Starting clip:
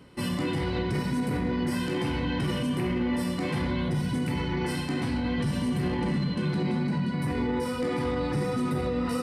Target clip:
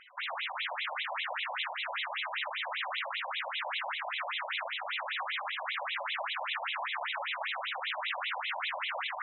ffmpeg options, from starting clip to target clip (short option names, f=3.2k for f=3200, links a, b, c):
-af "equalizer=f=870:t=o:w=0.24:g=-10.5,aeval=exprs='(mod(39.8*val(0)+1,2)-1)/39.8':c=same,areverse,acompressor=mode=upward:threshold=-41dB:ratio=2.5,areverse,afftfilt=real='re*between(b*sr/1024,720*pow(2900/720,0.5+0.5*sin(2*PI*5.1*pts/sr))/1.41,720*pow(2900/720,0.5+0.5*sin(2*PI*5.1*pts/sr))*1.41)':imag='im*between(b*sr/1024,720*pow(2900/720,0.5+0.5*sin(2*PI*5.1*pts/sr))/1.41,720*pow(2900/720,0.5+0.5*sin(2*PI*5.1*pts/sr))*1.41)':win_size=1024:overlap=0.75,volume=8.5dB"